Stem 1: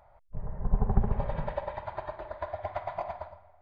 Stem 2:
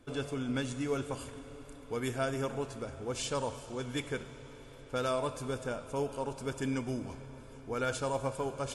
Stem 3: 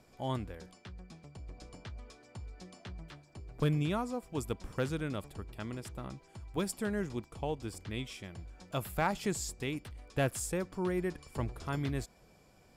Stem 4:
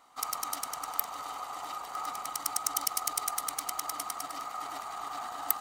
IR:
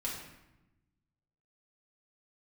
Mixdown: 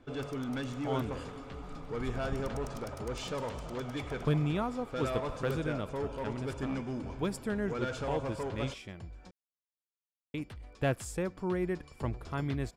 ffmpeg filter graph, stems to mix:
-filter_complex "[0:a]adelay=1350,volume=0.188[s0];[1:a]lowpass=6500,asoftclip=type=tanh:threshold=0.0251,volume=1.19[s1];[2:a]adelay=650,volume=1.12,asplit=3[s2][s3][s4];[s2]atrim=end=9.31,asetpts=PTS-STARTPTS,afade=t=out:st=9.306:d=0.004:c=hsin[s5];[s3]atrim=start=9.31:end=10.34,asetpts=PTS-STARTPTS,volume=0[s6];[s4]atrim=start=10.34,asetpts=PTS-STARTPTS,afade=t=in:d=0.004:c=hsin[s7];[s5][s6][s7]concat=n=3:v=0:a=1[s8];[3:a]highshelf=f=9500:g=-8,volume=0.2[s9];[s0][s1][s8][s9]amix=inputs=4:normalize=0,highshelf=f=5900:g=-10.5"

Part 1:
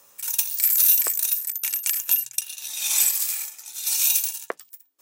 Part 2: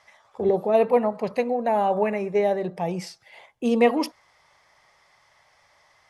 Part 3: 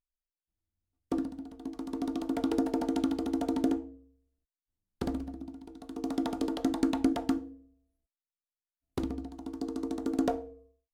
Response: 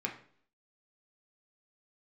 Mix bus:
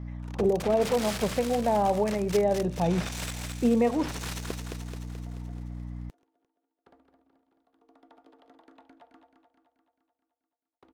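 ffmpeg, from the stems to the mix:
-filter_complex "[0:a]aeval=exprs='(mod(4.73*val(0)+1,2)-1)/4.73':c=same,adynamicsmooth=sensitivity=3.5:basefreq=1100,volume=0.631,asplit=2[s0][s1];[s1]volume=0.473[s2];[1:a]aeval=exprs='val(0)+0.0126*(sin(2*PI*60*n/s)+sin(2*PI*2*60*n/s)/2+sin(2*PI*3*60*n/s)/3+sin(2*PI*4*60*n/s)/4+sin(2*PI*5*60*n/s)/5)':c=same,volume=1.06[s3];[2:a]acrossover=split=490 3100:gain=0.1 1 0.141[s4][s5][s6];[s4][s5][s6]amix=inputs=3:normalize=0,adelay=1850,volume=0.126,asplit=2[s7][s8];[s8]volume=0.422[s9];[s0][s3]amix=inputs=2:normalize=0,lowpass=f=1200:p=1,alimiter=limit=0.158:level=0:latency=1:release=382,volume=1[s10];[s2][s9]amix=inputs=2:normalize=0,aecho=0:1:216|432|648|864|1080|1296|1512|1728|1944:1|0.58|0.336|0.195|0.113|0.0656|0.0381|0.0221|0.0128[s11];[s7][s10][s11]amix=inputs=3:normalize=0,equalizer=f=150:w=0.96:g=4"

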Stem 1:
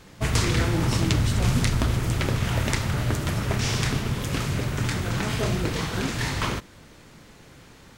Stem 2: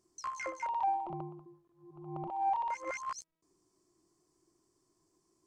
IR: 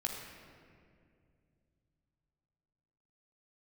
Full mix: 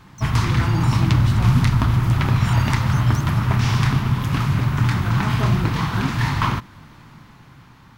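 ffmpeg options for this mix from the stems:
-filter_complex "[0:a]equalizer=f=125:t=o:w=1:g=8,equalizer=f=250:t=o:w=1:g=3,equalizer=f=500:t=o:w=1:g=-10,equalizer=f=1000:t=o:w=1:g=10,equalizer=f=8000:t=o:w=1:g=-9,volume=0.891[s0];[1:a]aeval=exprs='0.0631*sin(PI/2*7.94*val(0)/0.0631)':c=same,volume=0.178[s1];[s0][s1]amix=inputs=2:normalize=0,dynaudnorm=f=160:g=11:m=1.41"

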